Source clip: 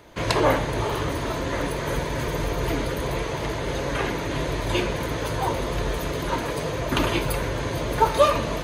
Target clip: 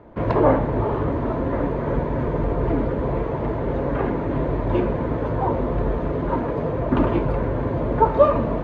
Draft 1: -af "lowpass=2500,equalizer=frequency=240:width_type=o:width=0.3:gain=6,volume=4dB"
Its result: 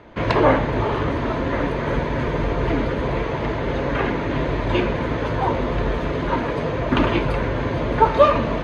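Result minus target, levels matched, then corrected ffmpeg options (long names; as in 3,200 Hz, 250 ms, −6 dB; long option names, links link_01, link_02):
2,000 Hz band +8.5 dB
-af "lowpass=1000,equalizer=frequency=240:width_type=o:width=0.3:gain=6,volume=4dB"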